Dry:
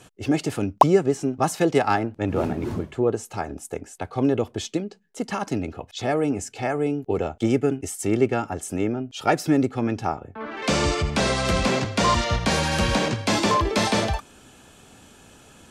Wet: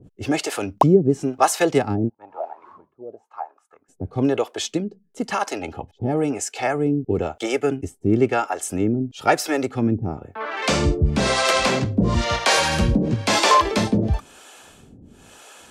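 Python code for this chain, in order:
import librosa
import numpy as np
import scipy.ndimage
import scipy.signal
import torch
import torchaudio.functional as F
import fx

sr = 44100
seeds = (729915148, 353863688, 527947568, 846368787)

y = fx.harmonic_tremolo(x, sr, hz=1.0, depth_pct=100, crossover_hz=420.0)
y = fx.auto_wah(y, sr, base_hz=630.0, top_hz=1500.0, q=8.4, full_db=-22.5, direction='down', at=(2.08, 3.88), fade=0.02)
y = fx.small_body(y, sr, hz=(830.0, 3100.0), ring_ms=45, db=13, at=(5.61, 6.22))
y = F.gain(torch.from_numpy(y), 7.5).numpy()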